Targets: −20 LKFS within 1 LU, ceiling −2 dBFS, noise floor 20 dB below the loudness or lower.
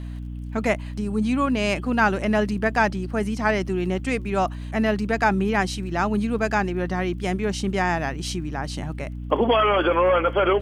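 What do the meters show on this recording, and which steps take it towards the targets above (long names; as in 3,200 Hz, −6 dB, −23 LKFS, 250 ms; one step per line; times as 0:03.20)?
crackle rate 24 per second; mains hum 60 Hz; hum harmonics up to 300 Hz; level of the hum −30 dBFS; integrated loudness −23.0 LKFS; sample peak −6.0 dBFS; target loudness −20.0 LKFS
→ click removal
mains-hum notches 60/120/180/240/300 Hz
level +3 dB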